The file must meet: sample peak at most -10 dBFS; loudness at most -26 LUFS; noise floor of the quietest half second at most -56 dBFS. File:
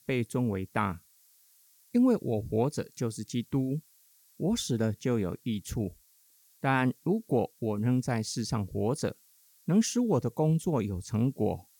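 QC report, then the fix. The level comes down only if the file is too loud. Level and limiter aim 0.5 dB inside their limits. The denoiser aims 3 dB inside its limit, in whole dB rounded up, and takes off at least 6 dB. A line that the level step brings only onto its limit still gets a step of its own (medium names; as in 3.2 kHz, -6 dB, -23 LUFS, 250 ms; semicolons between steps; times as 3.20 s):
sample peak -13.5 dBFS: pass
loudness -30.0 LUFS: pass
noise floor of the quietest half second -64 dBFS: pass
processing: none needed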